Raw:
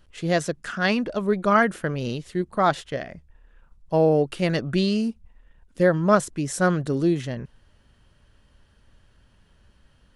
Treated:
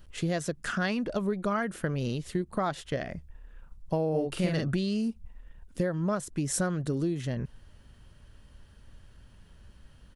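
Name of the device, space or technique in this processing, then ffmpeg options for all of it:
ASMR close-microphone chain: -filter_complex "[0:a]lowshelf=frequency=230:gain=5.5,acompressor=threshold=-26dB:ratio=8,highshelf=frequency=8600:gain=7,asplit=3[link_01][link_02][link_03];[link_01]afade=type=out:start_time=4.13:duration=0.02[link_04];[link_02]asplit=2[link_05][link_06];[link_06]adelay=44,volume=-2.5dB[link_07];[link_05][link_07]amix=inputs=2:normalize=0,afade=type=in:start_time=4.13:duration=0.02,afade=type=out:start_time=4.67:duration=0.02[link_08];[link_03]afade=type=in:start_time=4.67:duration=0.02[link_09];[link_04][link_08][link_09]amix=inputs=3:normalize=0"

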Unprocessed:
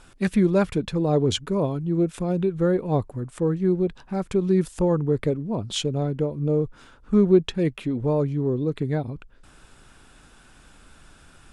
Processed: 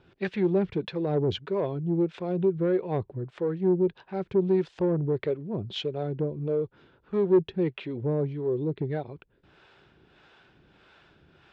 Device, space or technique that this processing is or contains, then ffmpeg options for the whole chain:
guitar amplifier with harmonic tremolo: -filter_complex "[0:a]acrossover=split=440[link_01][link_02];[link_01]aeval=exprs='val(0)*(1-0.7/2+0.7/2*cos(2*PI*1.6*n/s))':channel_layout=same[link_03];[link_02]aeval=exprs='val(0)*(1-0.7/2-0.7/2*cos(2*PI*1.6*n/s))':channel_layout=same[link_04];[link_03][link_04]amix=inputs=2:normalize=0,asoftclip=type=tanh:threshold=-18.5dB,highpass=100,equalizer=frequency=250:width_type=q:width=4:gain=-7,equalizer=frequency=380:width_type=q:width=4:gain=6,equalizer=frequency=1200:width_type=q:width=4:gain=-5,lowpass=frequency=4000:width=0.5412,lowpass=frequency=4000:width=1.3066"

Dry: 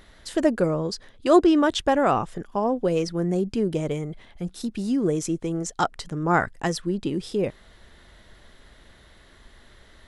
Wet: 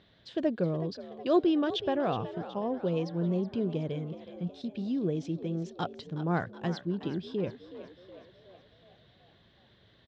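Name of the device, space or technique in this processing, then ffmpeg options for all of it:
frequency-shifting delay pedal into a guitar cabinet: -filter_complex "[0:a]asplit=7[link_01][link_02][link_03][link_04][link_05][link_06][link_07];[link_02]adelay=370,afreqshift=60,volume=-13.5dB[link_08];[link_03]adelay=740,afreqshift=120,volume=-18.5dB[link_09];[link_04]adelay=1110,afreqshift=180,volume=-23.6dB[link_10];[link_05]adelay=1480,afreqshift=240,volume=-28.6dB[link_11];[link_06]adelay=1850,afreqshift=300,volume=-33.6dB[link_12];[link_07]adelay=2220,afreqshift=360,volume=-38.7dB[link_13];[link_01][link_08][link_09][link_10][link_11][link_12][link_13]amix=inputs=7:normalize=0,highpass=100,equalizer=frequency=110:width_type=q:width=4:gain=8,equalizer=frequency=170:width_type=q:width=4:gain=5,equalizer=frequency=890:width_type=q:width=4:gain=-5,equalizer=frequency=1300:width_type=q:width=4:gain=-7,equalizer=frequency=2000:width_type=q:width=4:gain=-6,equalizer=frequency=3500:width_type=q:width=4:gain=4,lowpass=frequency=4300:width=0.5412,lowpass=frequency=4300:width=1.3066,volume=-8dB"

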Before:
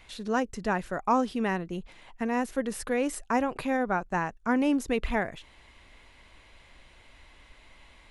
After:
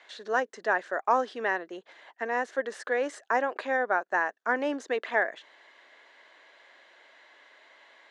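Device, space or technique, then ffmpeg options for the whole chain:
phone speaker on a table: -af "highpass=frequency=360:width=0.5412,highpass=frequency=360:width=1.3066,equalizer=frequency=630:width_type=q:width=4:gain=4,equalizer=frequency=1700:width_type=q:width=4:gain=9,equalizer=frequency=2500:width_type=q:width=4:gain=-6,equalizer=frequency=5200:width_type=q:width=4:gain=-4,lowpass=frequency=6500:width=0.5412,lowpass=frequency=6500:width=1.3066"

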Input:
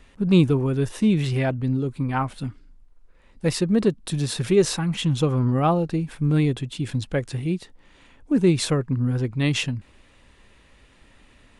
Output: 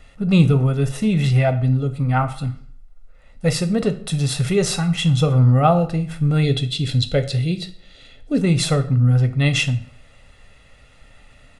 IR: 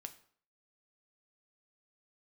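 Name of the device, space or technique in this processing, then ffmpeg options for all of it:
microphone above a desk: -filter_complex "[0:a]aecho=1:1:1.5:0.64[link_01];[1:a]atrim=start_sample=2205[link_02];[link_01][link_02]afir=irnorm=-1:irlink=0,asettb=1/sr,asplit=3[link_03][link_04][link_05];[link_03]atrim=end=6.434[link_06];[link_04]atrim=start=6.43:end=8.41,asetpts=PTS-STARTPTS,afade=type=in:duration=0.004:curve=qsin,afade=type=out:start_time=1.976:duration=0.004:curve=qsin,equalizer=frequency=400:width_type=o:width=0.67:gain=6,equalizer=frequency=1000:width_type=o:width=0.67:gain=-9,equalizer=frequency=4000:width_type=o:width=0.67:gain=12[link_07];[link_05]atrim=start=8.406[link_08];[link_06][link_07]acrossfade=duration=0.004:curve1=hsin:curve2=qsin[link_09];[link_09][link_08]acrossfade=duration=0.004:curve1=qsin:curve2=hsin,volume=7.5dB"

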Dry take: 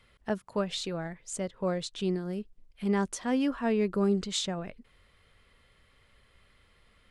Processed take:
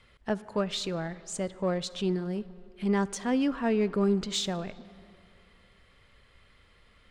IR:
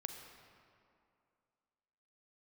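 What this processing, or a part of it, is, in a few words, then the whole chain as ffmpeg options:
saturated reverb return: -filter_complex "[0:a]lowpass=8600,asplit=2[link_01][link_02];[1:a]atrim=start_sample=2205[link_03];[link_02][link_03]afir=irnorm=-1:irlink=0,asoftclip=type=tanh:threshold=-36dB,volume=-5dB[link_04];[link_01][link_04]amix=inputs=2:normalize=0"

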